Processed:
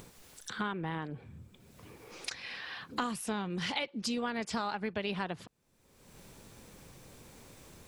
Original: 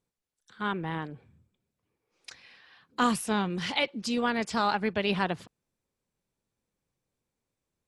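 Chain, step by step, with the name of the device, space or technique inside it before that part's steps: upward and downward compression (upward compressor, threshold -44 dBFS; compression 6:1, threshold -42 dBFS, peak gain reduction 20.5 dB); trim +9 dB

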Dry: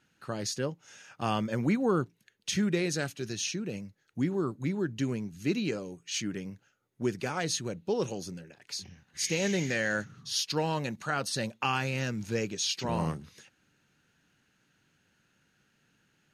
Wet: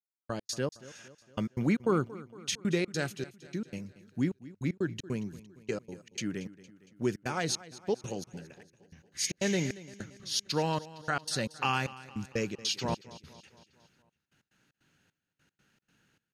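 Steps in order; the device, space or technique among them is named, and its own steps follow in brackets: trance gate with a delay (trance gate "...x.xx.xxx" 153 bpm -60 dB; feedback delay 230 ms, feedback 55%, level -18 dB)

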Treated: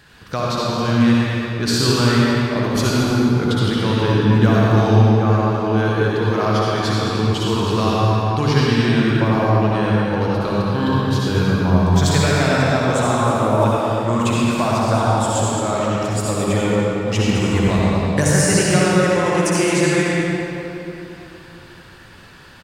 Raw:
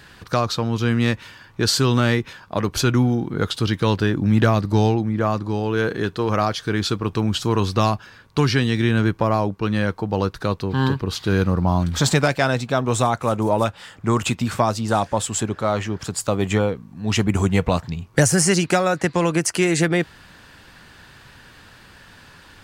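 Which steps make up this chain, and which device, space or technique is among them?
cave (delay 222 ms -9.5 dB; reverberation RT60 3.2 s, pre-delay 55 ms, DRR -6 dB); trim -4 dB

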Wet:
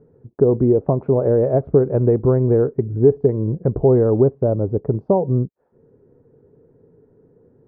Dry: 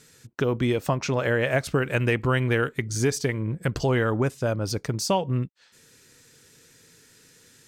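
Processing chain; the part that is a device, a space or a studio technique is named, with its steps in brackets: under water (low-pass 760 Hz 24 dB/octave; peaking EQ 410 Hz +7 dB 0.37 oct); trim +6.5 dB

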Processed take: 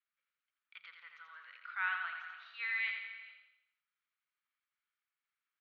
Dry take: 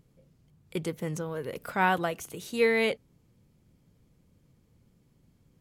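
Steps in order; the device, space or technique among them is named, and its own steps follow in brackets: hearing-loss simulation (low-pass 1.9 kHz 12 dB/octave; expander -59 dBFS); elliptic band-pass 1.3–4.2 kHz, stop band 60 dB; treble shelf 4.8 kHz +12 dB; feedback delay 85 ms, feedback 49%, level -5.5 dB; gated-style reverb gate 470 ms flat, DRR 11 dB; trim -5 dB

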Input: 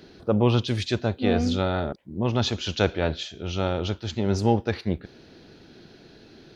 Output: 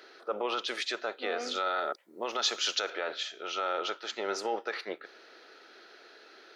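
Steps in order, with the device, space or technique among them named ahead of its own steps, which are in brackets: laptop speaker (high-pass 430 Hz 24 dB/octave; peaking EQ 1.3 kHz +12 dB 0.23 oct; peaking EQ 1.9 kHz +6 dB 0.56 oct; peak limiter -19.5 dBFS, peak gain reduction 12 dB); 1.55–2.90 s: tone controls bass +1 dB, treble +9 dB; trim -2 dB

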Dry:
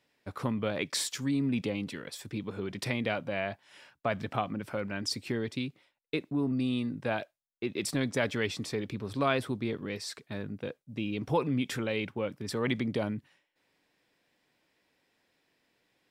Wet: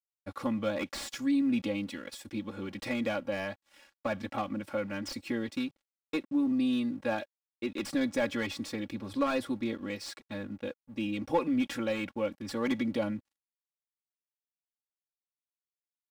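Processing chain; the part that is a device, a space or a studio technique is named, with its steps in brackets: early transistor amplifier (crossover distortion -58 dBFS; slew-rate limiter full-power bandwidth 59 Hz); comb 3.6 ms, depth 95%; trim -2.5 dB

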